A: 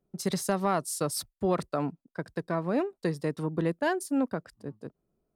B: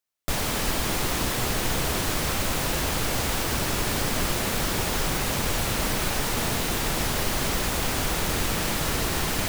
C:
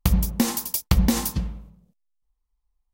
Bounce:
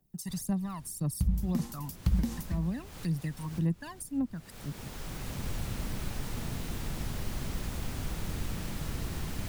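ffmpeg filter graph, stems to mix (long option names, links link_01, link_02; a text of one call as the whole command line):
ffmpeg -i stem1.wav -i stem2.wav -i stem3.wav -filter_complex "[0:a]aphaser=in_gain=1:out_gain=1:delay=1.1:decay=0.74:speed=1.9:type=triangular,aemphasis=mode=production:type=75fm,aecho=1:1:1.1:0.56,volume=-6.5dB,asplit=2[link_01][link_02];[1:a]volume=-5dB[link_03];[2:a]adelay=1150,volume=-7.5dB[link_04];[link_02]apad=whole_len=418329[link_05];[link_03][link_05]sidechaincompress=threshold=-41dB:ratio=12:attack=8.4:release=832[link_06];[link_01][link_06][link_04]amix=inputs=3:normalize=0,acrossover=split=240[link_07][link_08];[link_08]acompressor=threshold=-46dB:ratio=3[link_09];[link_07][link_09]amix=inputs=2:normalize=0" out.wav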